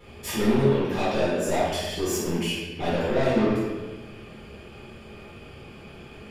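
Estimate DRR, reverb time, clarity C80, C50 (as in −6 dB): −10.5 dB, 1.3 s, 2.0 dB, −1.5 dB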